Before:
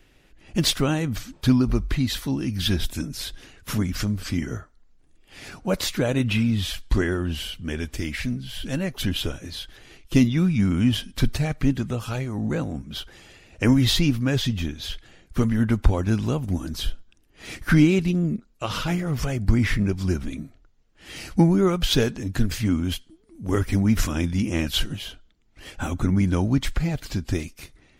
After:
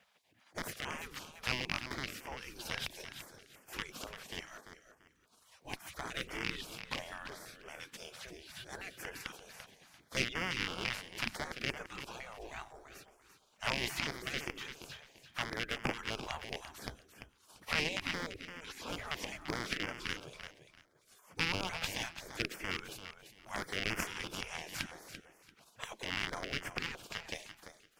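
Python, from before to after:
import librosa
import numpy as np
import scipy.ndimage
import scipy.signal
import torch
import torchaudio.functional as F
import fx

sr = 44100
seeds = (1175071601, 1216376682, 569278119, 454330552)

y = fx.rattle_buzz(x, sr, strikes_db=-22.0, level_db=-13.0)
y = fx.spec_gate(y, sr, threshold_db=-20, keep='weak')
y = fx.high_shelf(y, sr, hz=4000.0, db=-10.5)
y = fx.quant_companded(y, sr, bits=8)
y = fx.cheby_harmonics(y, sr, harmonics=(8,), levels_db=(-15,), full_scale_db=-5.0)
y = fx.echo_feedback(y, sr, ms=341, feedback_pct=22, wet_db=-10.0)
y = fx.filter_held_notch(y, sr, hz=5.9, low_hz=320.0, high_hz=3900.0)
y = y * librosa.db_to_amplitude(-2.5)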